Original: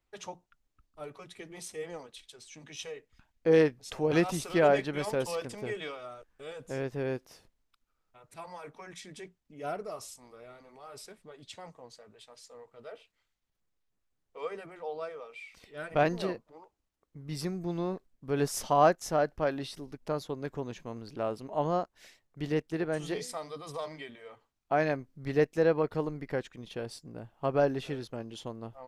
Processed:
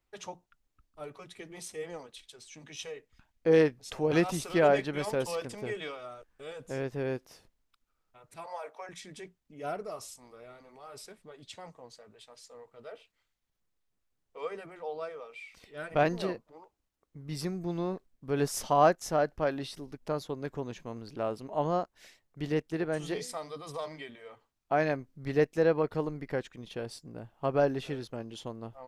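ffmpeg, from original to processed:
-filter_complex "[0:a]asettb=1/sr,asplit=3[s0][s1][s2];[s0]atrim=end=8.464[s3];[s1]atrim=start=8.46:end=8.89,asetpts=PTS-STARTPTS,afade=t=in:d=0.004:c=qsin,afade=t=out:st=0.426:d=0.004:c=qsin,highpass=f=610:t=q:w=2.8[s4];[s2]atrim=start=8.886[s5];[s3][s4]acrossfade=d=0.004:c1=hsin:c2=qsin[s6];[s6][s5]acrossfade=d=0.004:c1=qsin:c2=hsin"

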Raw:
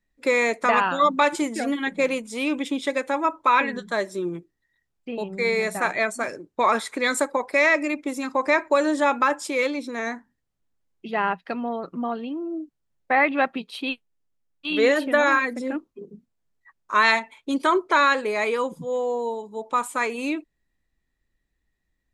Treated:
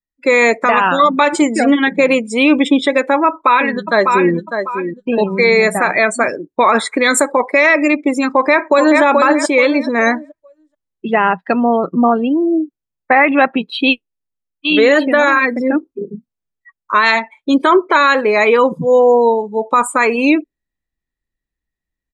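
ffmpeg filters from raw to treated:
-filter_complex "[0:a]asplit=2[s0][s1];[s1]afade=t=in:st=3.27:d=0.01,afade=t=out:st=4.33:d=0.01,aecho=0:1:600|1200|1800:0.316228|0.0948683|0.0284605[s2];[s0][s2]amix=inputs=2:normalize=0,asplit=2[s3][s4];[s4]afade=t=in:st=8.28:d=0.01,afade=t=out:st=9.02:d=0.01,aecho=0:1:430|860|1290|1720:0.562341|0.168702|0.0506107|0.0151832[s5];[s3][s5]amix=inputs=2:normalize=0,afftdn=nr=23:nf=-38,dynaudnorm=f=100:g=7:m=3.16,alimiter=level_in=2.24:limit=0.891:release=50:level=0:latency=1,volume=0.891"

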